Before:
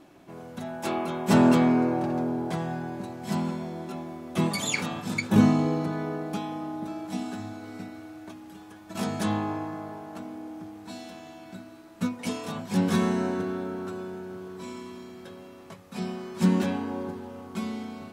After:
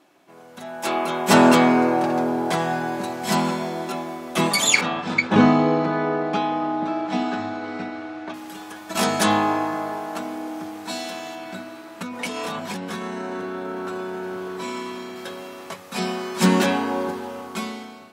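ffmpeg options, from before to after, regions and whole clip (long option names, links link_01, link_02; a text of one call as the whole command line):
ffmpeg -i in.wav -filter_complex "[0:a]asettb=1/sr,asplit=3[link_01][link_02][link_03];[link_01]atrim=end=4.814[link_04];[link_02]atrim=start=4.81:end=8.34,asetpts=PTS-STARTPTS,afade=type=in:duration=0.004:curve=qsin,afade=type=out:start_time=3.526:duration=0.004:curve=qsin,lowpass=4500,aemphasis=mode=reproduction:type=cd,asplit=2[link_05][link_06];[link_06]adelay=12,volume=-13dB[link_07];[link_05][link_07]amix=inputs=2:normalize=0,atrim=end_sample=155673[link_08];[link_03]atrim=start=8.336[link_09];[link_04][link_08]acrossfade=duration=0.004:curve1=hsin:curve2=qsin[link_10];[link_10][link_09]acrossfade=duration=0.004:curve1=qsin:curve2=hsin,asettb=1/sr,asplit=3[link_11][link_12][link_13];[link_11]atrim=end=11.354[link_14];[link_12]atrim=start=11.35:end=15.16,asetpts=PTS-STARTPTS,afade=type=in:duration=0.004:curve=qsin,afade=type=out:start_time=3.806:duration=0.004:curve=qsin,acompressor=threshold=-34dB:ratio=12:attack=3.2:release=140:knee=1:detection=peak,bass=frequency=250:gain=1,treble=frequency=4000:gain=-5[link_15];[link_13]atrim=start=15.156[link_16];[link_14][link_15]acrossfade=duration=0.004:curve1=hsin:curve2=qsin[link_17];[link_17][link_16]acrossfade=duration=0.004:curve1=qsin:curve2=hsin,highpass=frequency=630:poles=1,dynaudnorm=framelen=240:gausssize=7:maxgain=14.5dB" out.wav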